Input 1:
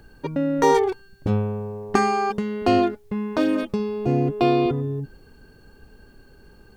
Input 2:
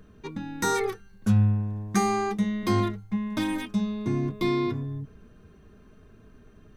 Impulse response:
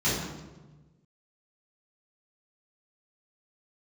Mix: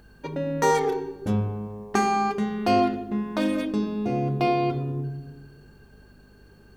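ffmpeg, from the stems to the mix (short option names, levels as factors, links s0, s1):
-filter_complex "[0:a]volume=0.75,asplit=2[s0][s1];[s1]volume=0.106[s2];[1:a]aeval=exprs='val(0)+0.01*(sin(2*PI*50*n/s)+sin(2*PI*2*50*n/s)/2+sin(2*PI*3*50*n/s)/3+sin(2*PI*4*50*n/s)/4+sin(2*PI*5*50*n/s)/5)':c=same,volume=-1,volume=0.501[s3];[2:a]atrim=start_sample=2205[s4];[s2][s4]afir=irnorm=-1:irlink=0[s5];[s0][s3][s5]amix=inputs=3:normalize=0,lowshelf=f=250:g=-8.5"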